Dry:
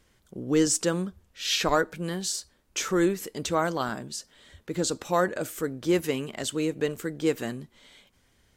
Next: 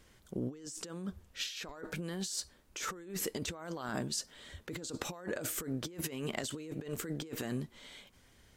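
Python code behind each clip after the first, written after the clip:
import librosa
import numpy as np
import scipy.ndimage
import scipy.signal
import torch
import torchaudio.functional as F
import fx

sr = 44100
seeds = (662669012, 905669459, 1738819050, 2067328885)

y = fx.over_compress(x, sr, threshold_db=-36.0, ratio=-1.0)
y = F.gain(torch.from_numpy(y), -5.0).numpy()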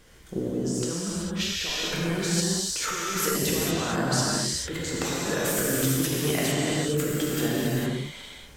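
y = fx.rev_gated(x, sr, seeds[0], gate_ms=480, shape='flat', drr_db=-6.5)
y = F.gain(torch.from_numpy(y), 6.0).numpy()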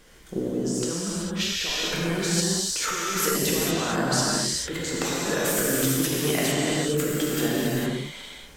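y = fx.peak_eq(x, sr, hz=90.0, db=-9.0, octaves=0.92)
y = F.gain(torch.from_numpy(y), 2.0).numpy()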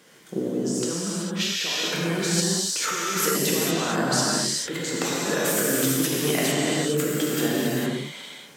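y = scipy.signal.sosfilt(scipy.signal.butter(4, 130.0, 'highpass', fs=sr, output='sos'), x)
y = F.gain(torch.from_numpy(y), 1.0).numpy()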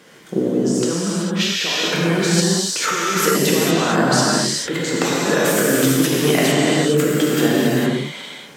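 y = fx.high_shelf(x, sr, hz=4900.0, db=-7.0)
y = F.gain(torch.from_numpy(y), 8.0).numpy()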